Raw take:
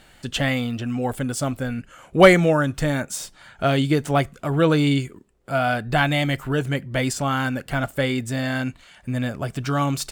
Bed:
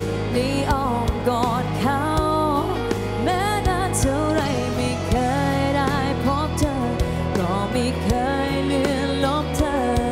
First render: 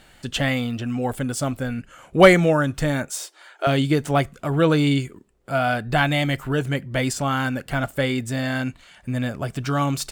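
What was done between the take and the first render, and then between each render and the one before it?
3.1–3.67 brick-wall FIR high-pass 300 Hz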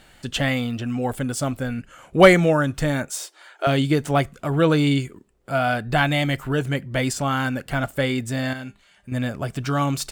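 8.53–9.12 resonator 200 Hz, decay 0.24 s, mix 70%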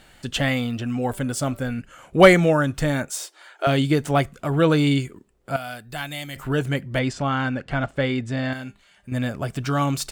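1.08–1.69 de-hum 193.5 Hz, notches 12; 5.56–6.36 pre-emphasis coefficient 0.8; 6.99–8.53 air absorption 120 m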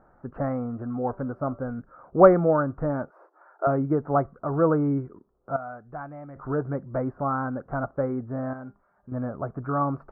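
elliptic low-pass 1300 Hz, stop band 60 dB; low shelf 300 Hz -7 dB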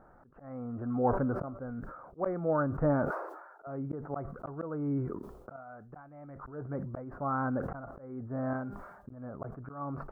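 auto swell 0.669 s; sustainer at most 54 dB/s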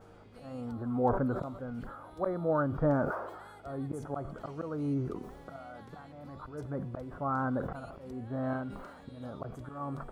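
add bed -33 dB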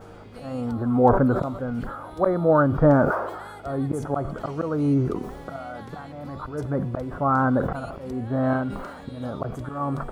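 gain +11 dB

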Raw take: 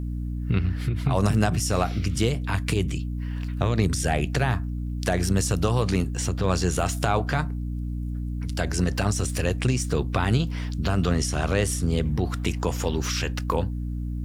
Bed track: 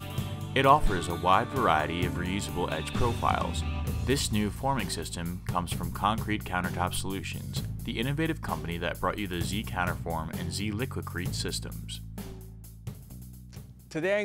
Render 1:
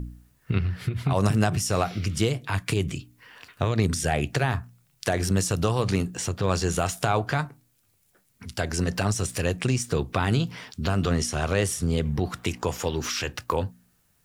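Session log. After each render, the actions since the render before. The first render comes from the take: de-hum 60 Hz, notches 5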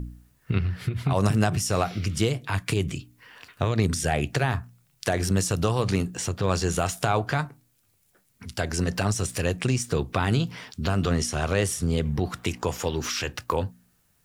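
nothing audible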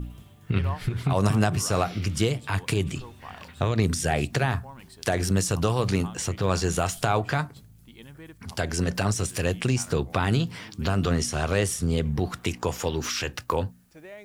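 add bed track -16.5 dB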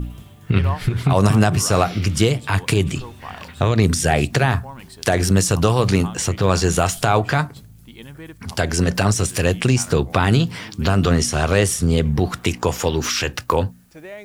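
gain +7.5 dB; limiter -2 dBFS, peak gain reduction 2.5 dB

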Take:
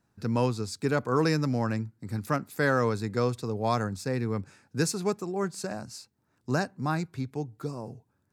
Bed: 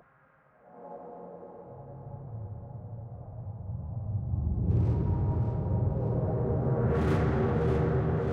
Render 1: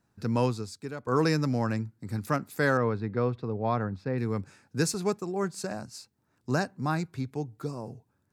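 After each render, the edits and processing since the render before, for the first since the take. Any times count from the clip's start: 0.49–1.07 fade out quadratic, to -13 dB; 2.77–4.18 air absorption 360 m; 4.94–5.97 expander -42 dBFS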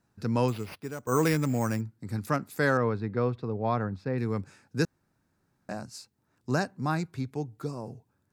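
0.48–1.81 careless resampling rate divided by 6×, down none, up hold; 4.85–5.69 room tone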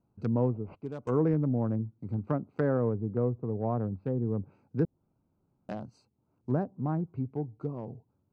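Wiener smoothing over 25 samples; treble ducked by the level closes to 660 Hz, closed at -26.5 dBFS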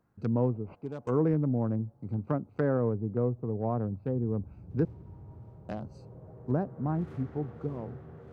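add bed -19.5 dB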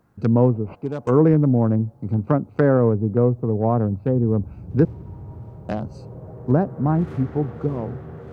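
gain +11 dB

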